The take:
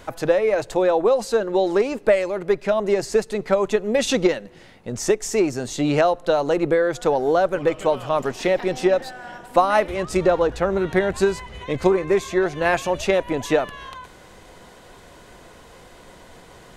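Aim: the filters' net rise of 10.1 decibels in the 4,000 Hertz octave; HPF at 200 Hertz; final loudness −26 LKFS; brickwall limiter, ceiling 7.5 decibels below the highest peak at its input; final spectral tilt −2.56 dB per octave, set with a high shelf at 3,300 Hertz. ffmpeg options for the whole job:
ffmpeg -i in.wav -af "highpass=200,highshelf=frequency=3300:gain=7,equalizer=frequency=4000:width_type=o:gain=7.5,volume=-4.5dB,alimiter=limit=-14dB:level=0:latency=1" out.wav

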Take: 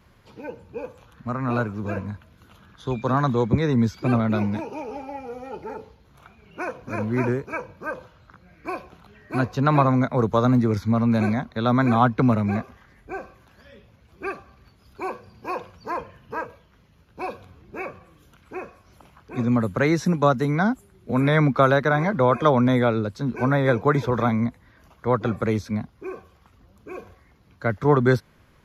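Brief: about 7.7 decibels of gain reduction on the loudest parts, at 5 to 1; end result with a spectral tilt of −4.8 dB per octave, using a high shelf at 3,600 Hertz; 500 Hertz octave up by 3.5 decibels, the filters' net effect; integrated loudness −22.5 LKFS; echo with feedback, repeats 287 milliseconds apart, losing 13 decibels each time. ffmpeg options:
ffmpeg -i in.wav -af "equalizer=frequency=500:width_type=o:gain=4,highshelf=frequency=3600:gain=6.5,acompressor=threshold=-19dB:ratio=5,aecho=1:1:287|574|861:0.224|0.0493|0.0108,volume=3.5dB" out.wav

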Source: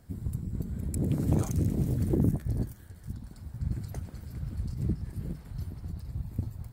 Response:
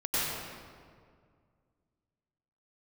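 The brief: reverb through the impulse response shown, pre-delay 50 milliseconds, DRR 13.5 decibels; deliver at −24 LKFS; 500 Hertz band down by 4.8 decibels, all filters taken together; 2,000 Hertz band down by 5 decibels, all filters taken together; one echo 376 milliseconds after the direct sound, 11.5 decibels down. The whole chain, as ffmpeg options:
-filter_complex "[0:a]equalizer=frequency=500:width_type=o:gain=-7,equalizer=frequency=2000:width_type=o:gain=-6,aecho=1:1:376:0.266,asplit=2[link_01][link_02];[1:a]atrim=start_sample=2205,adelay=50[link_03];[link_02][link_03]afir=irnorm=-1:irlink=0,volume=-23.5dB[link_04];[link_01][link_04]amix=inputs=2:normalize=0,volume=9dB"

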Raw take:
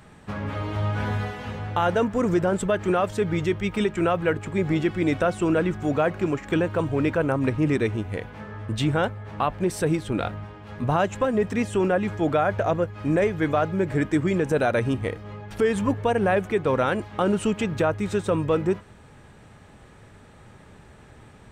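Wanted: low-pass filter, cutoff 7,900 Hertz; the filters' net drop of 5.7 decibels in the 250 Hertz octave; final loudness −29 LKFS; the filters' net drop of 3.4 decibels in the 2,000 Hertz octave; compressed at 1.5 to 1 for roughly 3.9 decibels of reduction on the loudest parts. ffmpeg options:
ffmpeg -i in.wav -af "lowpass=7900,equalizer=frequency=250:width_type=o:gain=-8.5,equalizer=frequency=2000:width_type=o:gain=-4.5,acompressor=threshold=-30dB:ratio=1.5,volume=1.5dB" out.wav

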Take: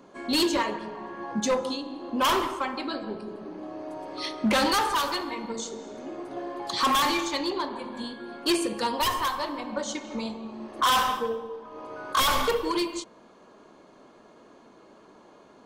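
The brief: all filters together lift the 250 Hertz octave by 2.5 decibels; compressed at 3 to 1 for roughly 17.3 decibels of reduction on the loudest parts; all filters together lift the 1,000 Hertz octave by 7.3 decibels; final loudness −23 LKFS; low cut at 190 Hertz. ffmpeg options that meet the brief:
ffmpeg -i in.wav -af "highpass=190,equalizer=frequency=250:width_type=o:gain=4,equalizer=frequency=1000:width_type=o:gain=8,acompressor=threshold=-38dB:ratio=3,volume=14dB" out.wav

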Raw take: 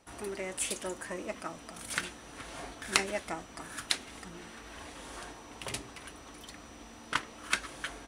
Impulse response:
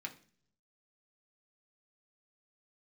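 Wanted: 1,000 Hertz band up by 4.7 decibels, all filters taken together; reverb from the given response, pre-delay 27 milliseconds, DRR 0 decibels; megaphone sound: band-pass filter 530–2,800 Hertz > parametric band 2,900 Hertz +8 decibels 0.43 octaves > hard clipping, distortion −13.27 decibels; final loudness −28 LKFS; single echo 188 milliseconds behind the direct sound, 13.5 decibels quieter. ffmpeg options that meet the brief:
-filter_complex "[0:a]equalizer=frequency=1000:width_type=o:gain=6.5,aecho=1:1:188:0.211,asplit=2[link_01][link_02];[1:a]atrim=start_sample=2205,adelay=27[link_03];[link_02][link_03]afir=irnorm=-1:irlink=0,volume=1dB[link_04];[link_01][link_04]amix=inputs=2:normalize=0,highpass=530,lowpass=2800,equalizer=frequency=2900:width_type=o:width=0.43:gain=8,asoftclip=type=hard:threshold=-17dB,volume=6.5dB"

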